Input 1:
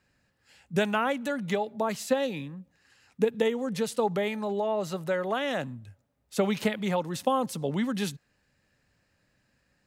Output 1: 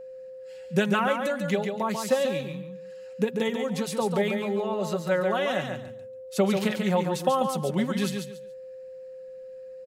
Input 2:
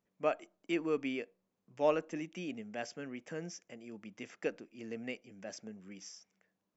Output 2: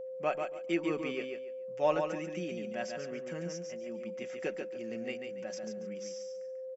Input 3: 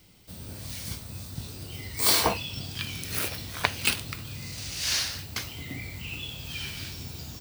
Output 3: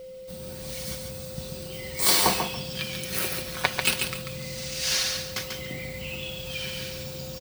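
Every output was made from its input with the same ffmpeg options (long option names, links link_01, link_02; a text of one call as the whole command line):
ffmpeg -i in.wav -af "aecho=1:1:5.4:0.57,aecho=1:1:141|282|423:0.531|0.122|0.0281,aeval=exprs='val(0)+0.0112*sin(2*PI*520*n/s)':channel_layout=same" out.wav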